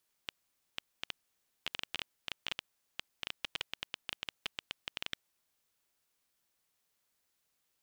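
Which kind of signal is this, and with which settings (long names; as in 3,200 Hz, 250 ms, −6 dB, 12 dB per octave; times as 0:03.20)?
Geiger counter clicks 9.4 per second −18 dBFS 4.95 s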